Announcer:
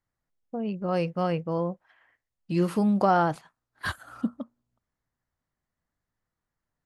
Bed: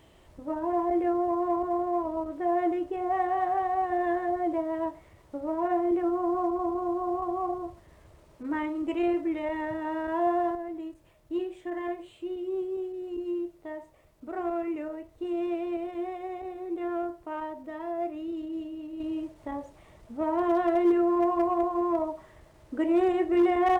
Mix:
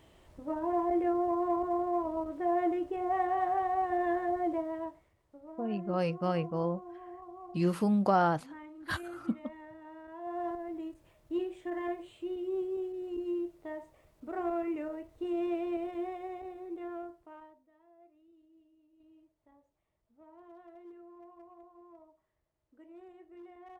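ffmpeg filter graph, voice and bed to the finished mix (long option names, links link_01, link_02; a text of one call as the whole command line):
ffmpeg -i stem1.wav -i stem2.wav -filter_complex "[0:a]adelay=5050,volume=-4dB[link_01];[1:a]volume=12dB,afade=type=out:start_time=4.46:duration=0.69:silence=0.188365,afade=type=in:start_time=10.23:duration=0.52:silence=0.177828,afade=type=out:start_time=15.88:duration=1.78:silence=0.0473151[link_02];[link_01][link_02]amix=inputs=2:normalize=0" out.wav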